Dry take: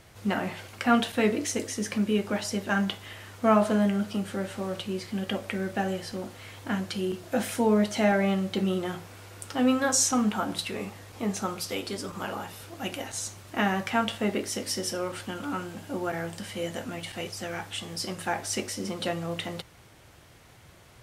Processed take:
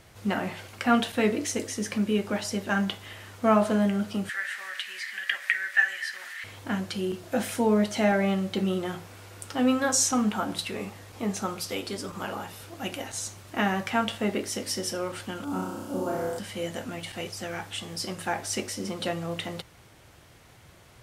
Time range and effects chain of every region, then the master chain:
0:04.29–0:06.44: high-pass with resonance 1,800 Hz, resonance Q 8.9 + upward compression, threshold −33 dBFS
0:15.44–0:16.39: parametric band 2,100 Hz −12.5 dB 1.6 octaves + flutter between parallel walls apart 5.5 metres, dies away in 1.1 s
whole clip: no processing

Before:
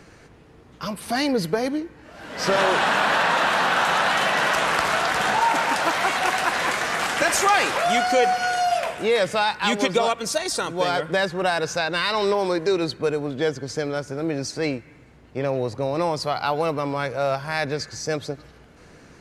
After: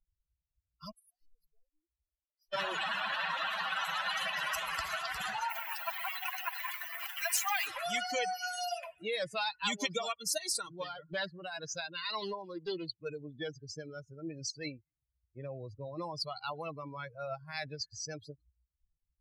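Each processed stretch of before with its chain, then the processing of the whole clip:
0:00.91–0:02.53: gain into a clipping stage and back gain 29.5 dB + downward compressor 16 to 1, threshold −42 dBFS + phaser with its sweep stopped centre 530 Hz, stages 4
0:05.50–0:07.67: hold until the input has moved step −28.5 dBFS + Chebyshev high-pass with heavy ripple 650 Hz, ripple 3 dB
0:10.72–0:13.06: amplitude tremolo 2 Hz, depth 35% + highs frequency-modulated by the lows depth 0.16 ms
whole clip: spectral dynamics exaggerated over time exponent 3; bass and treble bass −9 dB, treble −1 dB; every bin compressed towards the loudest bin 2 to 1; level −6 dB

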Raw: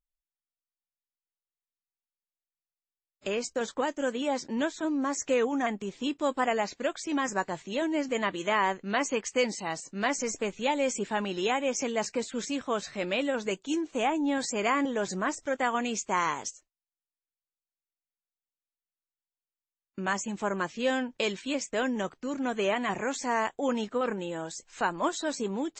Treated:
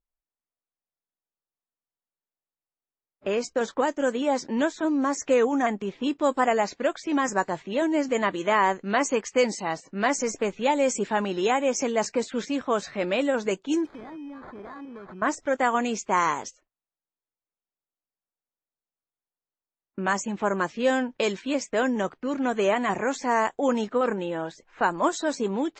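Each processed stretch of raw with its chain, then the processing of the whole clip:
0:13.85–0:15.22: flat-topped bell 650 Hz −9 dB 1 octave + downward compressor 4 to 1, threshold −45 dBFS + sample-rate reduction 2,800 Hz
whole clip: low-shelf EQ 150 Hz −5.5 dB; low-pass that shuts in the quiet parts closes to 1,100 Hz, open at −24 dBFS; dynamic equaliser 3,100 Hz, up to −6 dB, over −46 dBFS, Q 1; level +6 dB

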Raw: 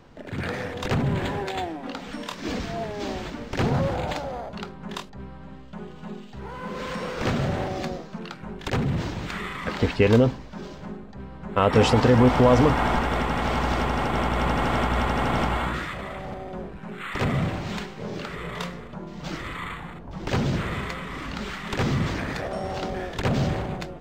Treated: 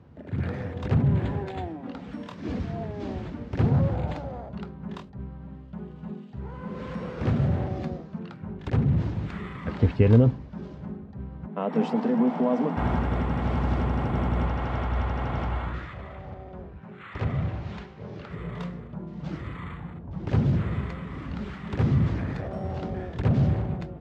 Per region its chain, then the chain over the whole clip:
0:11.46–0:12.77: Chebyshev high-pass with heavy ripple 160 Hz, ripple 6 dB + parametric band 1,300 Hz −3 dB 0.28 octaves + notch filter 530 Hz, Q 8.2
0:14.46–0:18.31: low-pass filter 7,100 Hz 24 dB per octave + parametric band 200 Hz −8 dB 1.9 octaves
whole clip: high-pass filter 71 Hz 24 dB per octave; RIAA equalisation playback; level −7.5 dB

